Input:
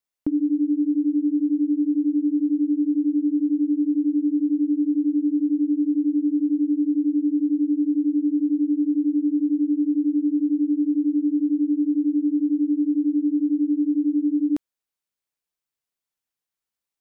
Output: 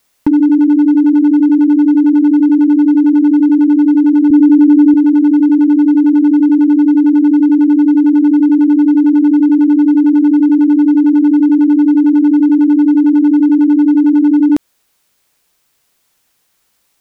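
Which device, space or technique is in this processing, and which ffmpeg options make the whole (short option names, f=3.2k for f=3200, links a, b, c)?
loud club master: -filter_complex "[0:a]acompressor=threshold=-23dB:ratio=3,asoftclip=type=hard:threshold=-21dB,alimiter=level_in=31dB:limit=-1dB:release=50:level=0:latency=1,asettb=1/sr,asplit=3[a][b][c];[a]atrim=end=4.304[d];[b]atrim=start=4.3:end=4.94,asetpts=PTS-STARTPTS,afade=t=in:d=0.004:c=qsin,afade=t=out:st=0.636:d=0.004:c=qsin,equalizer=f=63:w=0.5:g=13[e];[c]atrim=start=4.936[f];[d][e]acrossfade=d=0.004:c1=hsin:c2=qsin[g];[g][f]acrossfade=d=0.004:c1=qsin:c2=hsin,volume=-4dB"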